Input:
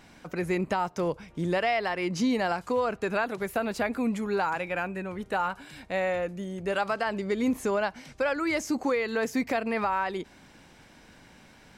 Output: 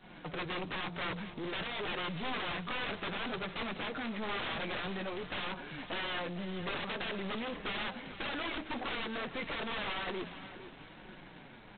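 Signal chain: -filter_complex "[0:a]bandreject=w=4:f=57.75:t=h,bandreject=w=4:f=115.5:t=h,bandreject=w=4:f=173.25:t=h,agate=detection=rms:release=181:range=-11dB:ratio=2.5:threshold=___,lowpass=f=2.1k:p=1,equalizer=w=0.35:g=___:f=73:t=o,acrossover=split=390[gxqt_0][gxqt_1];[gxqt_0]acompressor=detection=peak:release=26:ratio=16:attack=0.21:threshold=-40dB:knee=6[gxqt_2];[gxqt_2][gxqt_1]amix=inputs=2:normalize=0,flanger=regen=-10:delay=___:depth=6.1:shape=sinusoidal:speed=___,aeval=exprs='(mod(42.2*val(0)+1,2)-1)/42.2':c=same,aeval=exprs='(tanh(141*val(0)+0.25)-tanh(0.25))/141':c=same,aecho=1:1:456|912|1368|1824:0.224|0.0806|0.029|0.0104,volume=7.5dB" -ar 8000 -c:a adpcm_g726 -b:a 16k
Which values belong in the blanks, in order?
-50dB, -15, 5.4, 0.54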